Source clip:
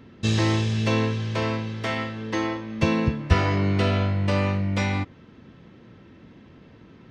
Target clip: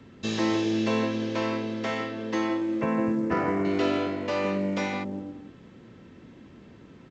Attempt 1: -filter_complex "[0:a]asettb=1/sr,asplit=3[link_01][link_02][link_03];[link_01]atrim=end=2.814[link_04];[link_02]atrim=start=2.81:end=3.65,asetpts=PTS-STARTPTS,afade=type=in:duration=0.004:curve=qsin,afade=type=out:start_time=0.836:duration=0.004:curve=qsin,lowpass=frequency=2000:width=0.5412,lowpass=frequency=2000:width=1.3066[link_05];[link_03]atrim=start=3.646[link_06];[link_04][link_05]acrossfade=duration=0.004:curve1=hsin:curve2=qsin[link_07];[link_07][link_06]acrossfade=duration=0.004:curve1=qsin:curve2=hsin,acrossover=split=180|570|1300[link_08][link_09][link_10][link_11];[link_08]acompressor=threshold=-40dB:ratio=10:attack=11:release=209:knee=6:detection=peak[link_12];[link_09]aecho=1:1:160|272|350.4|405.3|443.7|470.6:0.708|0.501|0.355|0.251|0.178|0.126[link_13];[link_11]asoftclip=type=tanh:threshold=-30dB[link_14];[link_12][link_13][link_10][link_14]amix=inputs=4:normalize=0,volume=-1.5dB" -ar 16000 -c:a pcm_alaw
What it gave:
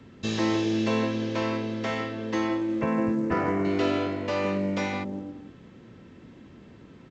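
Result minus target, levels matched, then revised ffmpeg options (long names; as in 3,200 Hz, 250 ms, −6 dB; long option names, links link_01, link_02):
downward compressor: peak gain reduction −8.5 dB
-filter_complex "[0:a]asettb=1/sr,asplit=3[link_01][link_02][link_03];[link_01]atrim=end=2.814[link_04];[link_02]atrim=start=2.81:end=3.65,asetpts=PTS-STARTPTS,afade=type=in:duration=0.004:curve=qsin,afade=type=out:start_time=0.836:duration=0.004:curve=qsin,lowpass=frequency=2000:width=0.5412,lowpass=frequency=2000:width=1.3066[link_05];[link_03]atrim=start=3.646[link_06];[link_04][link_05]acrossfade=duration=0.004:curve1=hsin:curve2=qsin[link_07];[link_07][link_06]acrossfade=duration=0.004:curve1=qsin:curve2=hsin,acrossover=split=180|570|1300[link_08][link_09][link_10][link_11];[link_08]acompressor=threshold=-49.5dB:ratio=10:attack=11:release=209:knee=6:detection=peak[link_12];[link_09]aecho=1:1:160|272|350.4|405.3|443.7|470.6:0.708|0.501|0.355|0.251|0.178|0.126[link_13];[link_11]asoftclip=type=tanh:threshold=-30dB[link_14];[link_12][link_13][link_10][link_14]amix=inputs=4:normalize=0,volume=-1.5dB" -ar 16000 -c:a pcm_alaw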